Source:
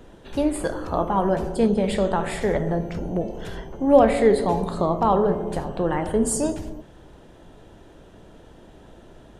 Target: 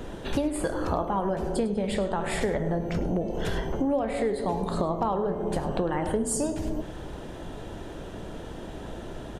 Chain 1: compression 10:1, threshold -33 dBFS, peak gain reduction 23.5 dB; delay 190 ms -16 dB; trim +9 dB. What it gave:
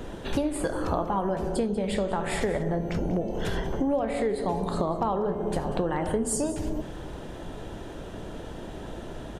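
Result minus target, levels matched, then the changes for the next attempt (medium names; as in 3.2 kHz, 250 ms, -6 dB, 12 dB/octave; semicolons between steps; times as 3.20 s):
echo 87 ms late
change: delay 103 ms -16 dB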